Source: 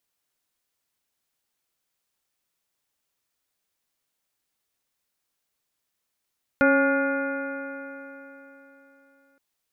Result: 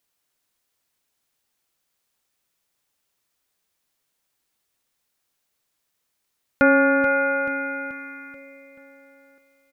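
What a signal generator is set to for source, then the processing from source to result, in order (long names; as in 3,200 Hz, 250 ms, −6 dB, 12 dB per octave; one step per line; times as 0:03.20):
stiff-string partials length 2.77 s, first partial 273 Hz, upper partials 0.5/−10/−14.5/0.5/−15/−14/−16 dB, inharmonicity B 0.0039, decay 3.58 s, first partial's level −19.5 dB
in parallel at −2.5 dB: speech leveller within 3 dB
on the sum: repeating echo 433 ms, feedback 48%, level −10 dB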